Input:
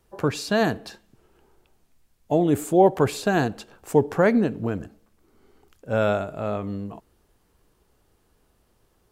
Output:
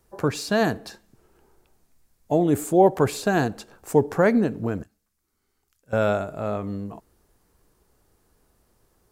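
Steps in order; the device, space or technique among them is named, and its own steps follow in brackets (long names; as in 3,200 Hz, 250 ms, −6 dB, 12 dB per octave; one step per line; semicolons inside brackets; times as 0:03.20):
exciter from parts (in parallel at −6 dB: high-pass filter 2,800 Hz 24 dB per octave + soft clipping −36.5 dBFS, distortion −9 dB)
0:04.83–0:05.93: on the sum: guitar amp tone stack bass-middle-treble 5-5-5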